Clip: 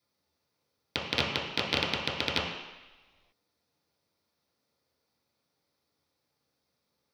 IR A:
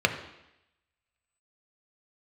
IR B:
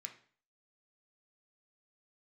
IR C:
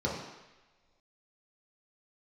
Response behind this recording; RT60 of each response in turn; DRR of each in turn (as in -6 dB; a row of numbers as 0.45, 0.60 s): C; 0.85 s, 0.45 s, not exponential; 5.0, 3.0, -5.0 dB